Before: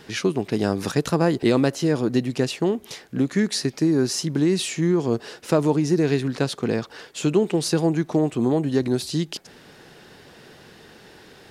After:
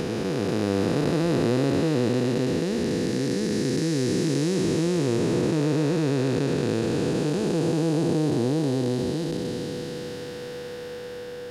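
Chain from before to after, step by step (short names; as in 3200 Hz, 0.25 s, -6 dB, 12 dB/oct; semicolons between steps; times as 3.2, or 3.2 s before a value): time blur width 1.49 s; in parallel at -0.5 dB: compressor, threshold -41 dBFS, peak gain reduction 18.5 dB; on the sum: whine 490 Hz -36 dBFS; gain +2 dB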